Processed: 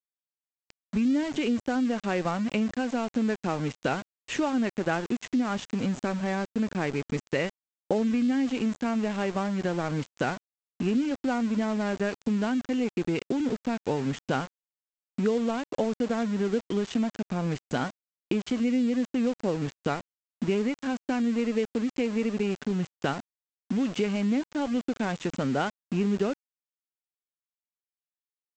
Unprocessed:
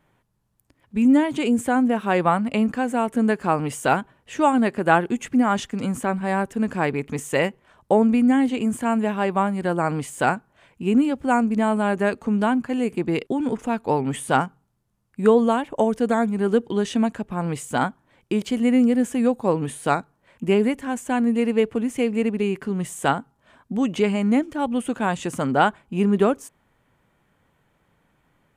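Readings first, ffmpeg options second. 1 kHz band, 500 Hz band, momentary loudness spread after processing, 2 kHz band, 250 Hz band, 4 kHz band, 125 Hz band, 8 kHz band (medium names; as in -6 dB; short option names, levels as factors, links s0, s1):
-11.0 dB, -7.5 dB, 5 LU, -7.0 dB, -5.5 dB, -3.5 dB, -4.5 dB, -8.5 dB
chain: -filter_complex "[0:a]acrossover=split=5600[s0][s1];[s1]acompressor=threshold=0.00355:ratio=4:attack=1:release=60[s2];[s0][s2]amix=inputs=2:normalize=0,equalizer=f=970:w=1.6:g=-8.5,acompressor=threshold=0.0158:ratio=3,aresample=16000,aeval=exprs='val(0)*gte(abs(val(0)),0.0075)':c=same,aresample=44100,volume=2.37"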